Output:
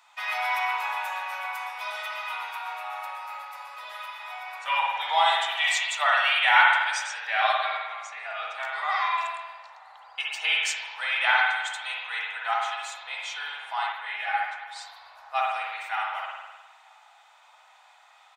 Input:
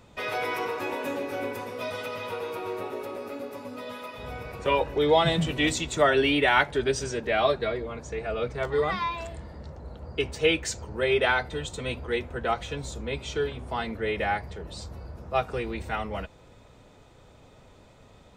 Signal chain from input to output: elliptic high-pass 780 Hz, stop band 50 dB; echo from a far wall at 160 m, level -29 dB; spring tank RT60 1.2 s, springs 51 ms, chirp 60 ms, DRR -2.5 dB; 13.92–14.76 s: three-phase chorus; trim +1 dB

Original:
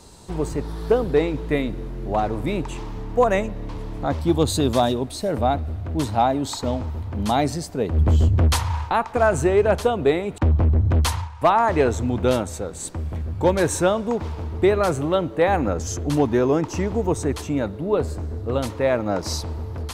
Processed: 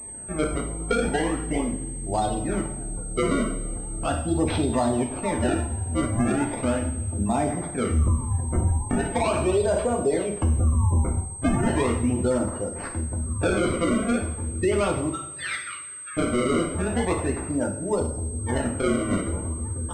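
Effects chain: phaser 0.15 Hz, delay 1.9 ms, feedback 21%; decimation with a swept rate 29×, swing 160% 0.38 Hz; spectral gate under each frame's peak -25 dB strong; 8.15–9.15 s: compressor with a negative ratio -21 dBFS, ratio -1; 15.09–16.17 s: elliptic high-pass 1.3 kHz, stop band 40 dB; two-slope reverb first 0.53 s, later 2.1 s, from -18 dB, DRR 0 dB; peak limiter -9.5 dBFS, peak gain reduction 8.5 dB; class-D stage that switches slowly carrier 8.3 kHz; trim -4.5 dB

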